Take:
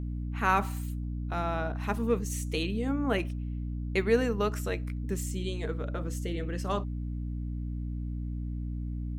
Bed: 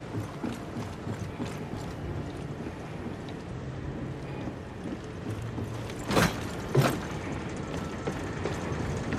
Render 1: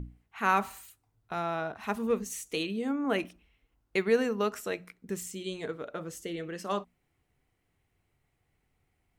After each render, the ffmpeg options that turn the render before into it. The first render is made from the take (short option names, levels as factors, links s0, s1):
-af "bandreject=f=60:t=h:w=6,bandreject=f=120:t=h:w=6,bandreject=f=180:t=h:w=6,bandreject=f=240:t=h:w=6,bandreject=f=300:t=h:w=6"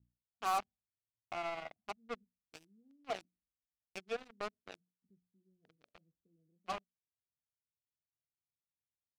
-filter_complex "[0:a]asplit=3[s0][s1][s2];[s0]bandpass=f=730:t=q:w=8,volume=1[s3];[s1]bandpass=f=1090:t=q:w=8,volume=0.501[s4];[s2]bandpass=f=2440:t=q:w=8,volume=0.355[s5];[s3][s4][s5]amix=inputs=3:normalize=0,acrossover=split=200[s6][s7];[s7]acrusher=bits=5:mix=0:aa=0.5[s8];[s6][s8]amix=inputs=2:normalize=0"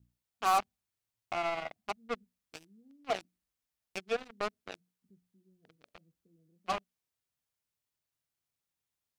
-af "volume=2.11"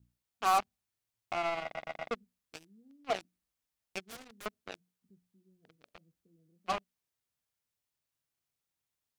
-filter_complex "[0:a]asettb=1/sr,asplit=3[s0][s1][s2];[s0]atrim=end=4.024[s3];[s1]atrim=start=4.02:end=4.46,asetpts=PTS-STARTPTS,afade=t=in:d=0.004:c=qsin,afade=t=out:st=0.436:d=0.004:c=qsin,aeval=exprs='0.01*(abs(mod(val(0)/0.01+3,4)-2)-1)':c=same[s4];[s2]atrim=start=4.456[s5];[s3][s4]acrossfade=d=0.004:c1=hsin:c2=qsin[s6];[s6][s5]acrossfade=d=0.004:c1=qsin:c2=hsin,asplit=5[s7][s8][s9][s10][s11];[s7]atrim=end=1.752[s12];[s8]atrim=start=1.628:end=1.752[s13];[s9]atrim=start=1.628:end=1.752[s14];[s10]atrim=start=1.628:end=1.752[s15];[s11]atrim=start=2.108[s16];[s12][s13]acrossfade=d=0.004:c1=hsin:c2=hsin[s17];[s17][s14]acrossfade=d=0.004:c1=hsin:c2=hsin[s18];[s18][s15]acrossfade=d=0.004:c1=hsin:c2=hsin[s19];[s19][s16]acrossfade=d=0.004:c1=hsin:c2=hsin"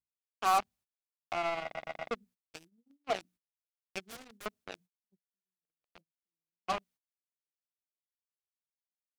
-af "agate=range=0.0126:threshold=0.00126:ratio=16:detection=peak"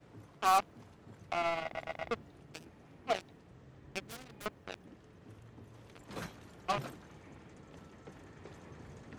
-filter_complex "[1:a]volume=0.106[s0];[0:a][s0]amix=inputs=2:normalize=0"